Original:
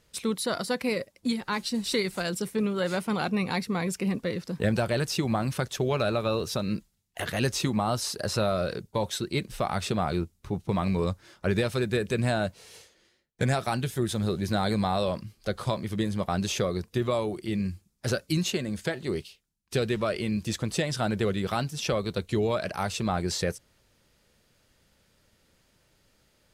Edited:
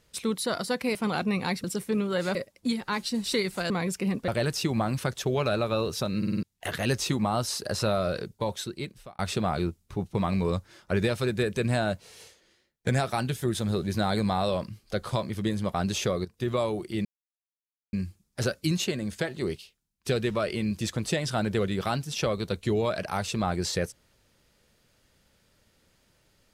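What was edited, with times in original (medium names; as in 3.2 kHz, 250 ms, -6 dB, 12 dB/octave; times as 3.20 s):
0.95–2.30 s: swap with 3.01–3.70 s
4.28–4.82 s: delete
6.72 s: stutter in place 0.05 s, 5 plays
8.56–9.73 s: fade out equal-power
16.79–17.06 s: fade in, from -15 dB
17.59 s: insert silence 0.88 s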